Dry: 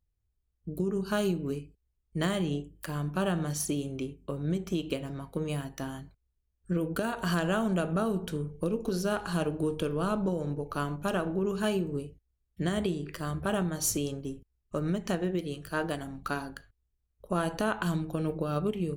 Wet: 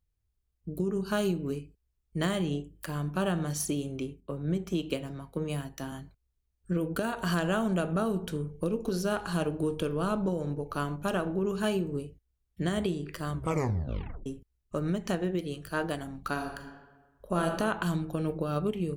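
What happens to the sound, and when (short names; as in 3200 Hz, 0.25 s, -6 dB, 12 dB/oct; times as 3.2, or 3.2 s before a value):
4.2–5.92 three-band expander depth 40%
13.32 tape stop 0.94 s
16.32–17.46 reverb throw, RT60 1.3 s, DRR 3.5 dB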